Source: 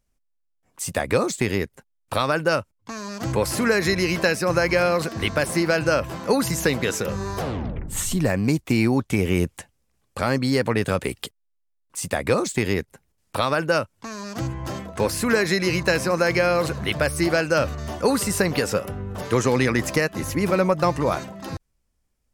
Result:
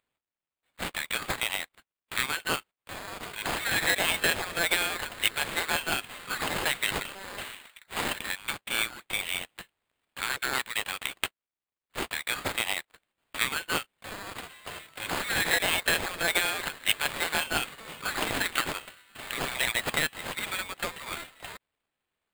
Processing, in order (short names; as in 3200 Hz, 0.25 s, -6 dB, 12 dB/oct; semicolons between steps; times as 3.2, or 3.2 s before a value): median filter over 5 samples; Bessel high-pass 3000 Hz, order 4; sample-rate reducer 5800 Hz, jitter 0%; gain +6.5 dB